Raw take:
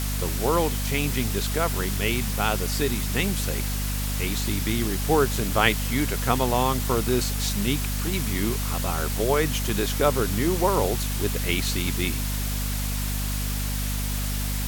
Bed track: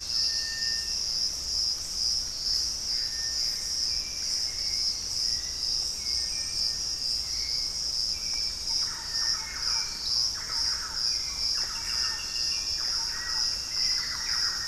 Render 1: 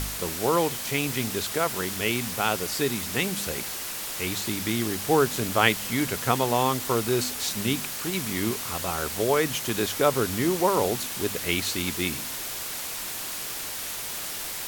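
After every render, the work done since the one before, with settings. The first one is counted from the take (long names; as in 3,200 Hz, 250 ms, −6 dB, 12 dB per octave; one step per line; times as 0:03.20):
hum removal 50 Hz, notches 5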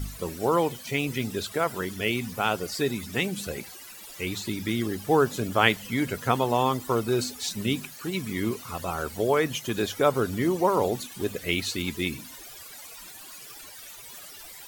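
broadband denoise 16 dB, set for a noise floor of −34 dBFS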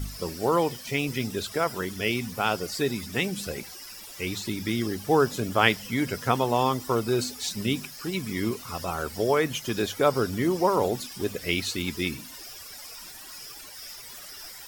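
mix in bed track −18.5 dB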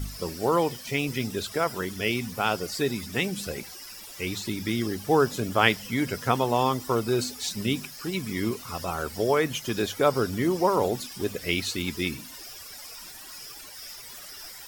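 no processing that can be heard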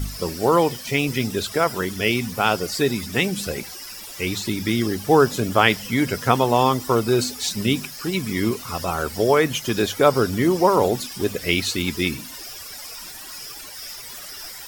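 level +6 dB
brickwall limiter −1 dBFS, peak gain reduction 3 dB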